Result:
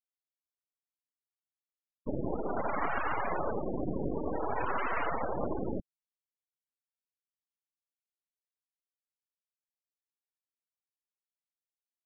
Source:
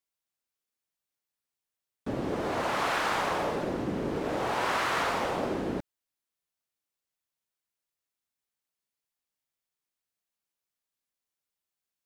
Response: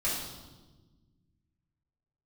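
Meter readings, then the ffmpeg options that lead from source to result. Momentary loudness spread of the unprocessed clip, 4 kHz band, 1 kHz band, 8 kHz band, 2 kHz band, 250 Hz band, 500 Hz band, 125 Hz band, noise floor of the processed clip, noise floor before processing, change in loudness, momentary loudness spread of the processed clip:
7 LU, -20.0 dB, -4.0 dB, under -35 dB, -6.5 dB, -3.5 dB, -3.5 dB, -2.0 dB, under -85 dBFS, under -85 dBFS, -4.5 dB, 5 LU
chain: -af "acrusher=bits=3:dc=4:mix=0:aa=0.000001,afftfilt=real='re*gte(hypot(re,im),0.0447)':imag='im*gte(hypot(re,im),0.0447)':win_size=1024:overlap=0.75,volume=1.33"

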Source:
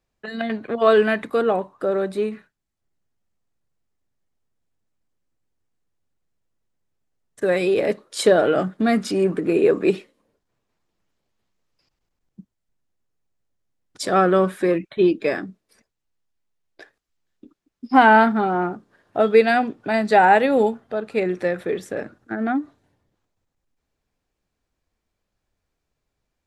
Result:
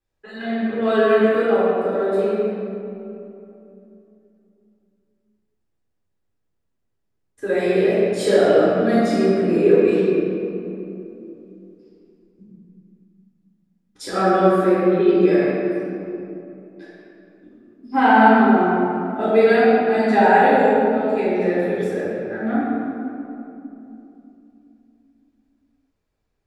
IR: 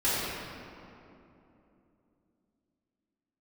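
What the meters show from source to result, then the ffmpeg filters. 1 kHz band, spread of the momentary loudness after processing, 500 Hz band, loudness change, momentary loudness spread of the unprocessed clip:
+1.0 dB, 18 LU, +3.0 dB, +2.0 dB, 13 LU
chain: -filter_complex "[1:a]atrim=start_sample=2205[s0];[0:a][s0]afir=irnorm=-1:irlink=0,volume=0.251"

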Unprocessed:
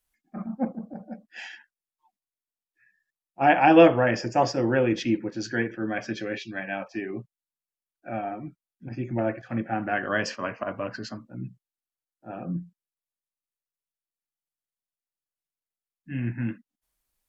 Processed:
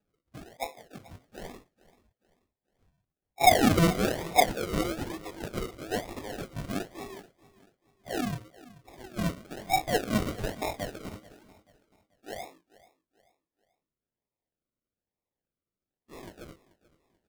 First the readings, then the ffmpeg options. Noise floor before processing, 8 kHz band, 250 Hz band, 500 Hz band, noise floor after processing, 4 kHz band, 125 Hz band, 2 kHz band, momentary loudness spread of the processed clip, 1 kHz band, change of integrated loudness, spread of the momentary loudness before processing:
under -85 dBFS, no reading, -5.5 dB, -7.0 dB, under -85 dBFS, +3.0 dB, -2.0 dB, -5.5 dB, 23 LU, -3.0 dB, -3.5 dB, 20 LU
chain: -af "highpass=f=530:w=0.5412,highpass=f=530:w=1.3066,equalizer=f=1700:t=o:w=0.54:g=-5,aecho=1:1:2.7:0.55,alimiter=limit=0.251:level=0:latency=1:release=259,flanger=delay=19:depth=3.3:speed=2.9,acrusher=samples=41:mix=1:aa=0.000001:lfo=1:lforange=24.6:lforate=1.1,aecho=1:1:435|870|1305:0.1|0.038|0.0144,volume=1.41"

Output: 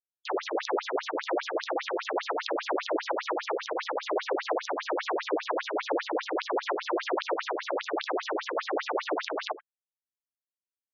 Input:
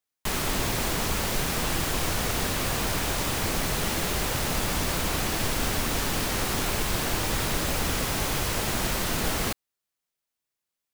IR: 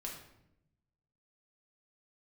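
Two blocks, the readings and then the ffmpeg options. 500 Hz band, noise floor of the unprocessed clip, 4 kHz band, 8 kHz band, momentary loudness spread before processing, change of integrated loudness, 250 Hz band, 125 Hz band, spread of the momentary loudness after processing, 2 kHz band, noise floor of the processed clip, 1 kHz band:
+3.0 dB, under -85 dBFS, -9.0 dB, -20.5 dB, 0 LU, -5.0 dB, -4.5 dB, under -40 dB, 2 LU, -4.0 dB, under -85 dBFS, +0.5 dB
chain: -filter_complex "[0:a]acrossover=split=4800[s0][s1];[s1]acompressor=threshold=0.00794:ratio=4:attack=1:release=60[s2];[s0][s2]amix=inputs=2:normalize=0,acrossover=split=210 2300:gain=0.224 1 0.0891[s3][s4][s5];[s3][s4][s5]amix=inputs=3:normalize=0,asplit=2[s6][s7];[s7]adynamicsmooth=sensitivity=2:basefreq=840,volume=0.944[s8];[s6][s8]amix=inputs=2:normalize=0,acrusher=bits=4:dc=4:mix=0:aa=0.000001,aecho=1:1:78:0.1,alimiter=level_in=7.5:limit=0.891:release=50:level=0:latency=1,afftfilt=real='re*between(b*sr/1024,390*pow(4900/390,0.5+0.5*sin(2*PI*5*pts/sr))/1.41,390*pow(4900/390,0.5+0.5*sin(2*PI*5*pts/sr))*1.41)':imag='im*between(b*sr/1024,390*pow(4900/390,0.5+0.5*sin(2*PI*5*pts/sr))/1.41,390*pow(4900/390,0.5+0.5*sin(2*PI*5*pts/sr))*1.41)':win_size=1024:overlap=0.75,volume=0.447"

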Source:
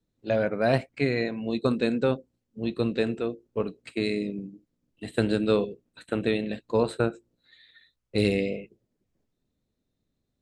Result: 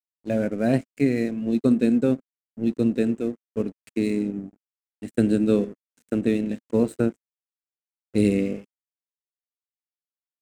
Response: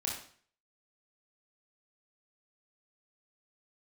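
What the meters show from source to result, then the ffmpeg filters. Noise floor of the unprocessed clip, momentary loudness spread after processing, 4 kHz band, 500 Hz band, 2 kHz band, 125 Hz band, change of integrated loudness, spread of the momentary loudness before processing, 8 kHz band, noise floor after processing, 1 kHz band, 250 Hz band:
-80 dBFS, 10 LU, -7.5 dB, 0.0 dB, -4.5 dB, +2.0 dB, +3.5 dB, 9 LU, no reading, under -85 dBFS, -5.5 dB, +7.0 dB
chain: -af "aeval=exprs='sgn(val(0))*max(abs(val(0))-0.00794,0)':c=same,equalizer=f=250:t=o:w=1:g=10,equalizer=f=1000:t=o:w=1:g=-9,equalizer=f=4000:t=o:w=1:g=-9,equalizer=f=8000:t=o:w=1:g=7"

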